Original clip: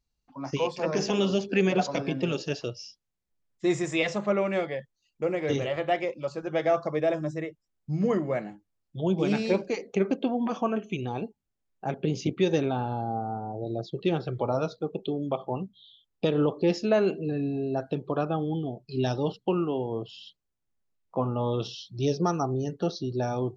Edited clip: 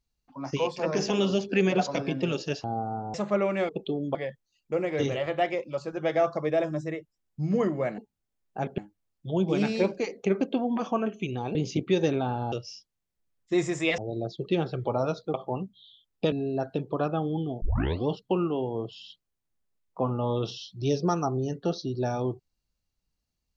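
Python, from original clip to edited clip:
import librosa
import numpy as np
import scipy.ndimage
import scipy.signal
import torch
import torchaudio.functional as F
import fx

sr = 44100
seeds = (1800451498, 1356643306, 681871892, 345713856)

y = fx.edit(x, sr, fx.swap(start_s=2.64, length_s=1.46, other_s=13.02, other_length_s=0.5),
    fx.move(start_s=11.25, length_s=0.8, to_s=8.48),
    fx.move(start_s=14.88, length_s=0.46, to_s=4.65),
    fx.cut(start_s=16.32, length_s=1.17),
    fx.tape_start(start_s=18.79, length_s=0.45), tone=tone)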